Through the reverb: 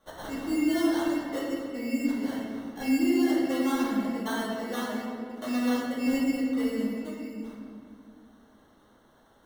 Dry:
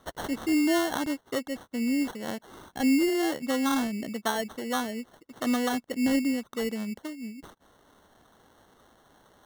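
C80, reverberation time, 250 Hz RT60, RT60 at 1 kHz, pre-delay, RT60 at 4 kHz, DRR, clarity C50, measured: 1.0 dB, 2.2 s, 3.0 s, 1.9 s, 3 ms, 1.3 s, −10.0 dB, −1.0 dB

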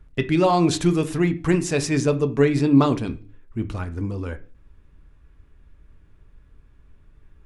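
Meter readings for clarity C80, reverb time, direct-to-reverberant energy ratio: 22.0 dB, 0.40 s, 8.0 dB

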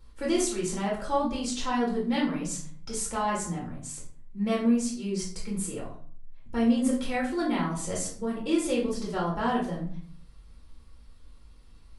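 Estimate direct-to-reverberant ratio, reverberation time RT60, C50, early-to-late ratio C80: −4.5 dB, 0.50 s, 6.0 dB, 10.5 dB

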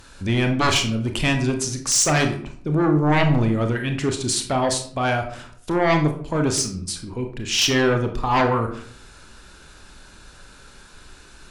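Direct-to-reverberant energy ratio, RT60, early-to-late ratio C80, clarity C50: 4.5 dB, 0.55 s, 12.5 dB, 8.5 dB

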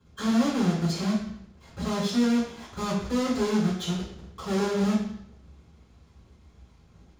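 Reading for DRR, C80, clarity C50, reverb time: −10.5 dB, 5.5 dB, 2.5 dB, 0.70 s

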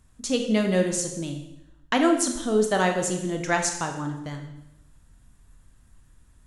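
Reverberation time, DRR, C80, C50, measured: 0.85 s, 4.0 dB, 9.0 dB, 7.0 dB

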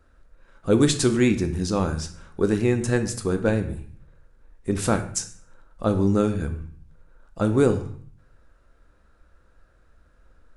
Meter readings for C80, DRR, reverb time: 14.5 dB, 7.0 dB, 0.50 s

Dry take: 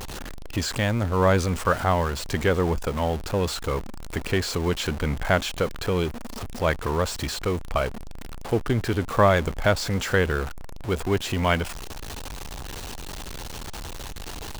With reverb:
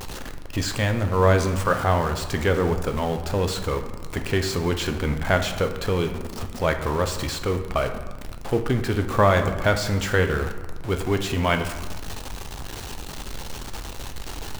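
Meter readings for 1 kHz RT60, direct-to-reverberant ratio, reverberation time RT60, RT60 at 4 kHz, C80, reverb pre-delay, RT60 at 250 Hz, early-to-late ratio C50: 1.3 s, 6.0 dB, 1.3 s, 0.75 s, 11.5 dB, 8 ms, 1.6 s, 9.0 dB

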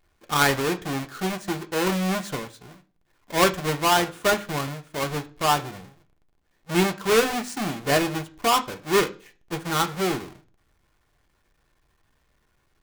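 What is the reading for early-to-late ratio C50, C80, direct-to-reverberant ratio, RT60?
17.5 dB, 22.5 dB, 4.5 dB, 0.40 s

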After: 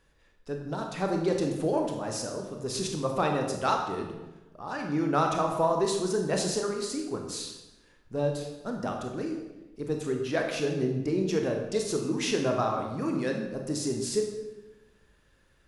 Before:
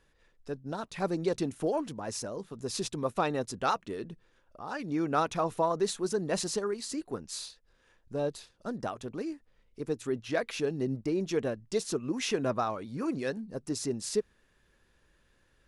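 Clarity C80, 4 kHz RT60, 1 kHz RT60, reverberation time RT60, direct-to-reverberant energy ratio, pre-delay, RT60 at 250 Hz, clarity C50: 7.0 dB, 0.80 s, 1.0 s, 1.1 s, 2.0 dB, 22 ms, 1.3 s, 5.0 dB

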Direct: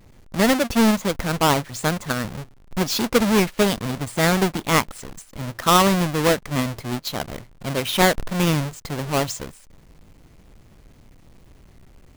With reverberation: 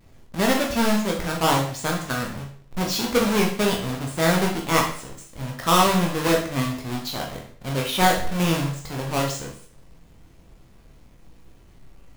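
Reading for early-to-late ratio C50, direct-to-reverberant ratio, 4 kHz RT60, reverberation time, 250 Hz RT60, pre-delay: 6.5 dB, −1.0 dB, 0.50 s, 0.50 s, 0.50 s, 12 ms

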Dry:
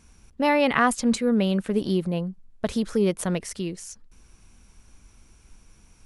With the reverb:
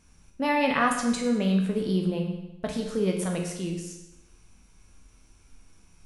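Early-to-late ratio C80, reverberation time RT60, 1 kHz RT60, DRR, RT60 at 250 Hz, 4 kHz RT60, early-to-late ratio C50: 7.0 dB, 0.95 s, 0.95 s, 1.0 dB, 0.90 s, 0.90 s, 4.5 dB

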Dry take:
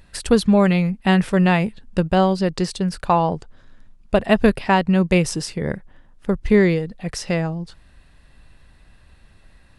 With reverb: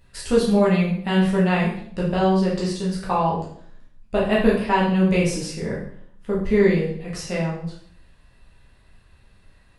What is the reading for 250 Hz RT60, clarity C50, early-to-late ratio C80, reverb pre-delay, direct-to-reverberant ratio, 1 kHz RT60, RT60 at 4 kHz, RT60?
0.70 s, 3.5 dB, 8.0 dB, 8 ms, −6.0 dB, 0.55 s, 0.55 s, 0.60 s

